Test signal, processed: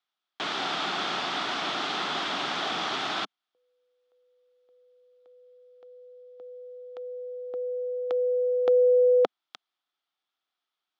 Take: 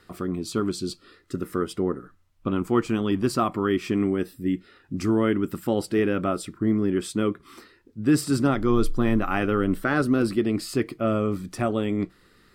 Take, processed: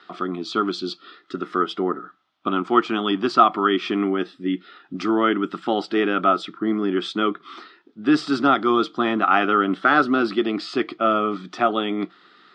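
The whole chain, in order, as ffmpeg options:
-af "highpass=f=210:w=0.5412,highpass=f=210:w=1.3066,equalizer=f=230:t=q:w=4:g=-5,equalizer=f=500:t=q:w=4:g=-8,equalizer=f=740:t=q:w=4:g=7,equalizer=f=1.3k:t=q:w=4:g=9,equalizer=f=3.4k:t=q:w=4:g=9,lowpass=f=5k:w=0.5412,lowpass=f=5k:w=1.3066,volume=4dB"

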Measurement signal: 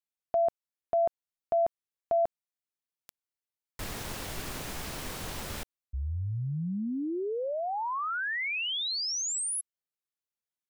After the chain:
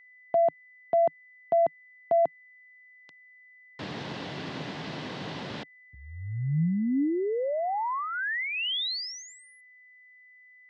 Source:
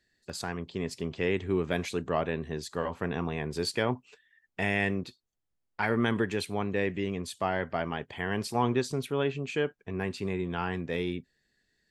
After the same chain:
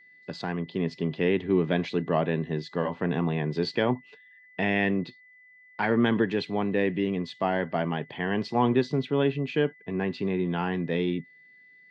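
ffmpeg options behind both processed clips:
-af "highpass=f=120:w=0.5412,highpass=f=120:w=1.3066,equalizer=f=160:t=q:w=4:g=5,equalizer=f=280:t=q:w=4:g=4,equalizer=f=1.3k:t=q:w=4:g=-5,equalizer=f=2.3k:t=q:w=4:g=-4,lowpass=f=4.2k:w=0.5412,lowpass=f=4.2k:w=1.3066,aeval=exprs='val(0)+0.00158*sin(2*PI*2000*n/s)':c=same,volume=3.5dB"

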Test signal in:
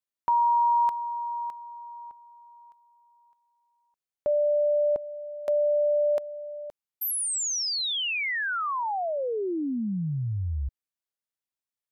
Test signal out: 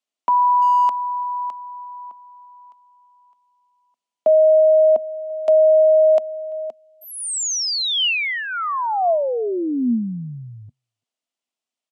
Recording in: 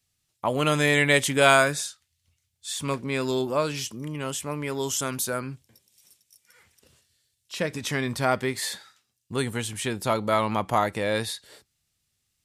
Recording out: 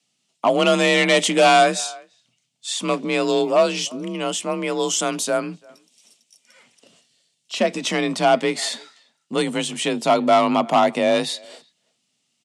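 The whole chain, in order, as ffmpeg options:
-filter_complex "[0:a]asplit=2[a][b];[b]adelay=340,highpass=300,lowpass=3.4k,asoftclip=type=hard:threshold=-11dB,volume=-26dB[c];[a][c]amix=inputs=2:normalize=0,asoftclip=type=hard:threshold=-18.5dB,highpass=180,equalizer=f=200:t=q:w=4:g=8,equalizer=f=640:t=q:w=4:g=7,equalizer=f=1.6k:t=q:w=4:g=-6,equalizer=f=2.9k:t=q:w=4:g=5,lowpass=f=8.7k:w=0.5412,lowpass=f=8.7k:w=1.3066,afreqshift=37,volume=6dB"

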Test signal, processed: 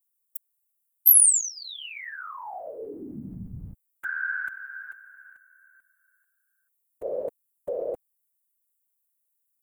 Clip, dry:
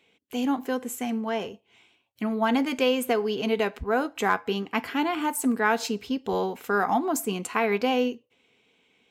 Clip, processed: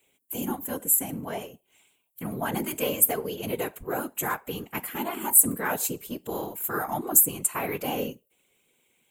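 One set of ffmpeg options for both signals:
-af "aexciter=amount=15.3:drive=4.6:freq=7.6k,afftfilt=real='hypot(re,im)*cos(2*PI*random(0))':imag='hypot(re,im)*sin(2*PI*random(1))':win_size=512:overlap=0.75"

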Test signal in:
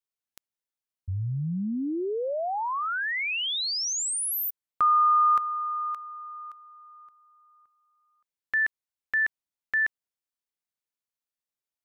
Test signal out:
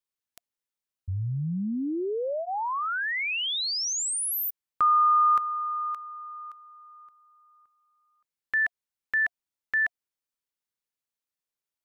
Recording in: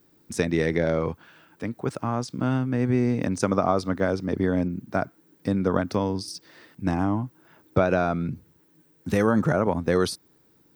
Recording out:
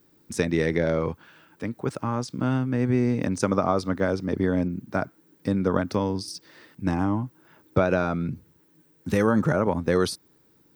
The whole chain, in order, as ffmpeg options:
-af "bandreject=f=700:w=12"

